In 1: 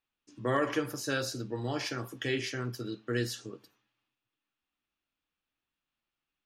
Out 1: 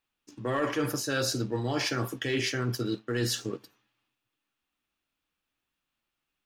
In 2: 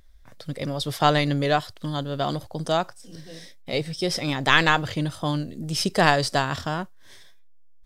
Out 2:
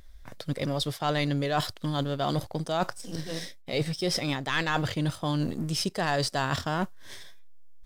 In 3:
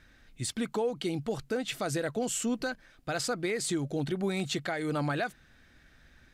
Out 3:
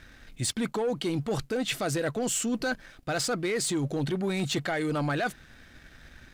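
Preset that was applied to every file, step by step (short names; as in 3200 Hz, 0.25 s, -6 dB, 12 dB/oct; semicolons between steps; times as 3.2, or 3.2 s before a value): sample leveller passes 1; reverse; compressor 6:1, threshold -32 dBFS; reverse; gain +6 dB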